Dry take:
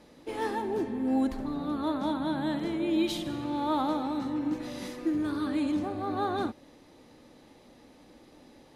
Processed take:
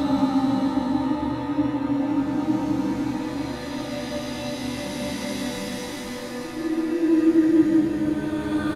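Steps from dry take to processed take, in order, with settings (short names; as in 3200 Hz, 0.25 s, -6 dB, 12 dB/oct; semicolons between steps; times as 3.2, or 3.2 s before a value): doubler 15 ms -5 dB; Paulstretch 8.3×, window 0.25 s, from 4.2; gain +8.5 dB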